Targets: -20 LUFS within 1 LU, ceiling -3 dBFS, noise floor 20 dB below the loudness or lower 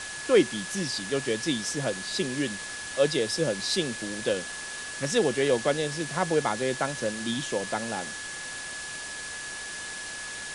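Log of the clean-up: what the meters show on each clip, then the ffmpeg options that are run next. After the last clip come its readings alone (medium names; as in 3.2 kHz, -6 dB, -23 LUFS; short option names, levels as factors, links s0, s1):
steady tone 1.7 kHz; tone level -38 dBFS; noise floor -38 dBFS; noise floor target -49 dBFS; loudness -28.5 LUFS; peak level -8.5 dBFS; loudness target -20.0 LUFS
-> -af "bandreject=f=1700:w=30"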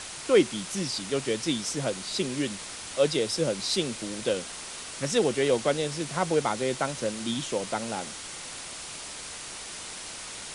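steady tone not found; noise floor -40 dBFS; noise floor target -49 dBFS
-> -af "afftdn=nr=9:nf=-40"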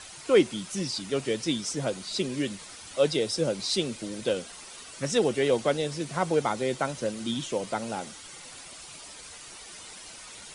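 noise floor -45 dBFS; noise floor target -49 dBFS
-> -af "afftdn=nr=6:nf=-45"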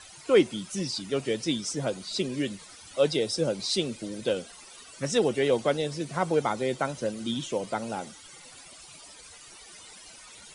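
noise floor -49 dBFS; loudness -28.5 LUFS; peak level -9.0 dBFS; loudness target -20.0 LUFS
-> -af "volume=2.66,alimiter=limit=0.708:level=0:latency=1"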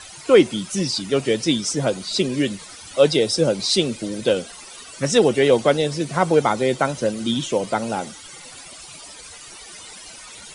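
loudness -20.0 LUFS; peak level -3.0 dBFS; noise floor -41 dBFS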